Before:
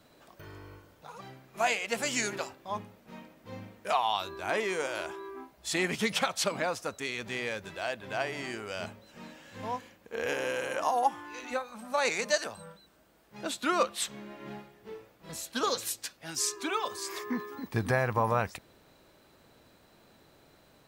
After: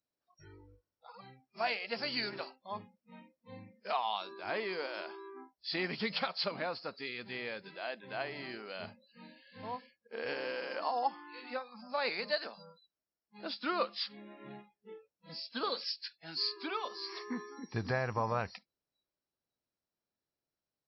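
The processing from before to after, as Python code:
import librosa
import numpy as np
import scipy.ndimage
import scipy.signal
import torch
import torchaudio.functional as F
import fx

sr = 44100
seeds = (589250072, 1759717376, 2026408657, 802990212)

y = fx.freq_compress(x, sr, knee_hz=4000.0, ratio=4.0)
y = fx.noise_reduce_blind(y, sr, reduce_db=29)
y = y * 10.0 ** (-6.0 / 20.0)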